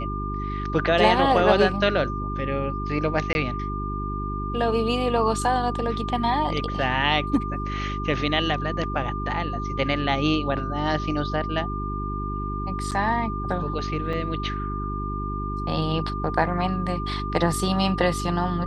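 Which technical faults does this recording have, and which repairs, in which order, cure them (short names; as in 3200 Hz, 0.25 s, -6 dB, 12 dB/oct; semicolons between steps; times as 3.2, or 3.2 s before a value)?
hum 50 Hz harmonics 8 -30 dBFS
tone 1200 Hz -31 dBFS
3.33–3.35 gap 21 ms
12.91–12.92 gap 7.9 ms
14.13 gap 4 ms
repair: notch 1200 Hz, Q 30; de-hum 50 Hz, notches 8; interpolate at 3.33, 21 ms; interpolate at 12.91, 7.9 ms; interpolate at 14.13, 4 ms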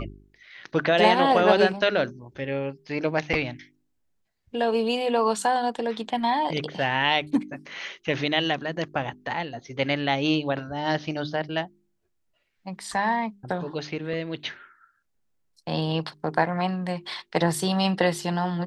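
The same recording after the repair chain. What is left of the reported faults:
none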